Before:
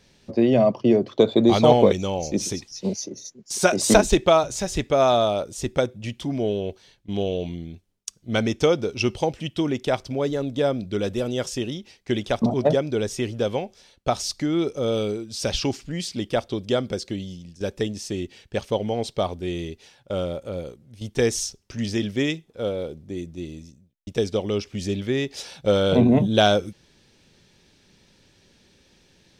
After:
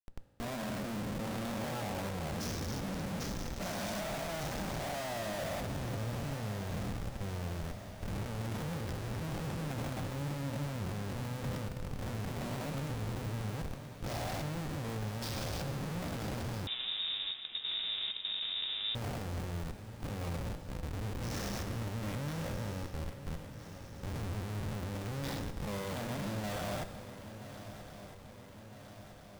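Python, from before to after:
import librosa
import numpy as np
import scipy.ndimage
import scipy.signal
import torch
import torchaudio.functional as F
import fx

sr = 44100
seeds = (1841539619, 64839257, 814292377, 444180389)

y = fx.spec_steps(x, sr, hold_ms=400)
y = fx.dynamic_eq(y, sr, hz=480.0, q=2.6, threshold_db=-40.0, ratio=4.0, max_db=-5)
y = fx.transient(y, sr, attack_db=-7, sustain_db=8)
y = fx.fixed_phaser(y, sr, hz=1900.0, stages=8)
y = fx.comb_fb(y, sr, f0_hz=77.0, decay_s=1.4, harmonics='all', damping=0.0, mix_pct=50)
y = fx.schmitt(y, sr, flips_db=-41.5)
y = fx.echo_swing(y, sr, ms=1308, ratio=3, feedback_pct=61, wet_db=-13)
y = fx.rev_fdn(y, sr, rt60_s=1.7, lf_ratio=1.0, hf_ratio=0.95, size_ms=11.0, drr_db=9.5)
y = fx.freq_invert(y, sr, carrier_hz=3700, at=(16.67, 18.95))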